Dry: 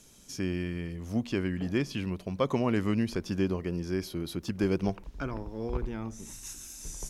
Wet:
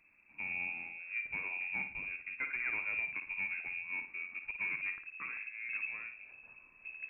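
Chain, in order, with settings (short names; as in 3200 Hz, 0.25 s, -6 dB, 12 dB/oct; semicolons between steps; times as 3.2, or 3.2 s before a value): soft clip -21.5 dBFS, distortion -17 dB; flutter echo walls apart 9.6 m, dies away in 0.39 s; inverted band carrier 2600 Hz; gain -8.5 dB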